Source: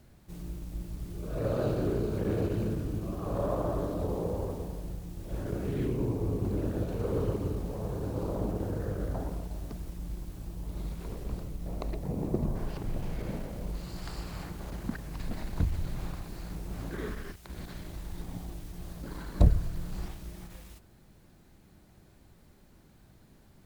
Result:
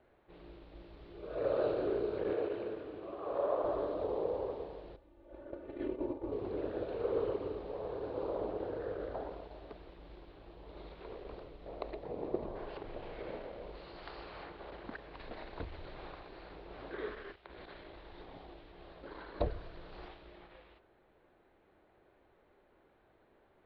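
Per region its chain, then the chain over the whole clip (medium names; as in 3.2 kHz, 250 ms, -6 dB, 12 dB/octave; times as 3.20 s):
2.33–3.64 s: high-pass 51 Hz + tone controls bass -8 dB, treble -6 dB
4.96–6.32 s: gate -31 dBFS, range -10 dB + treble shelf 2.5 kHz -10 dB + comb 3.4 ms, depth 76%
whole clip: level-controlled noise filter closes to 2.1 kHz; steep low-pass 4.2 kHz 48 dB/octave; resonant low shelf 280 Hz -14 dB, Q 1.5; trim -2.5 dB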